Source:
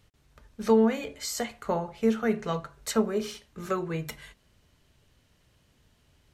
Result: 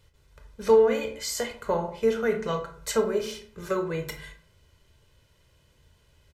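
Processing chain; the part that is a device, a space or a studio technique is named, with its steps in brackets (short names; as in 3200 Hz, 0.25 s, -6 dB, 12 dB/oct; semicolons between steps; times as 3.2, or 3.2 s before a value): microphone above a desk (comb 2 ms, depth 55%; reverb RT60 0.50 s, pre-delay 19 ms, DRR 6.5 dB)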